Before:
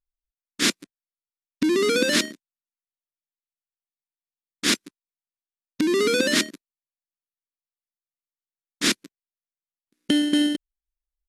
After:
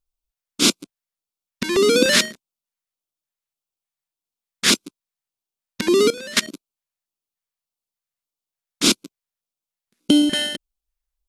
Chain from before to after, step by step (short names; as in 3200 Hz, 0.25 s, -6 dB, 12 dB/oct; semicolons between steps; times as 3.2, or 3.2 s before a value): LFO notch square 1.7 Hz 300–1800 Hz; 6.1–6.5 level quantiser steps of 20 dB; gain +6 dB